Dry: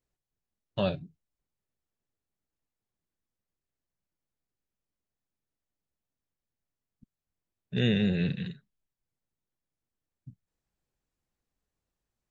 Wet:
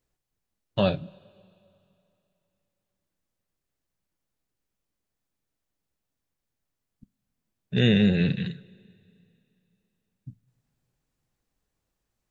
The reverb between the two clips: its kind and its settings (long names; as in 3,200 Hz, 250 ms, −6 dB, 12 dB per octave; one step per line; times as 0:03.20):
coupled-rooms reverb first 0.22 s, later 2.9 s, from −18 dB, DRR 16.5 dB
level +5.5 dB